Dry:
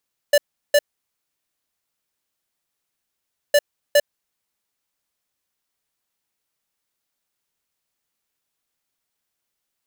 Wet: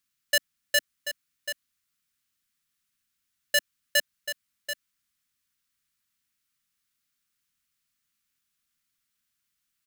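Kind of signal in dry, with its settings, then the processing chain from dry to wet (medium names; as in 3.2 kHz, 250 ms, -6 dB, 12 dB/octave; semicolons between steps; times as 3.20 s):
beep pattern square 583 Hz, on 0.05 s, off 0.36 s, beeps 2, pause 2.75 s, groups 2, -13 dBFS
high-order bell 570 Hz -15.5 dB; on a send: delay 735 ms -10 dB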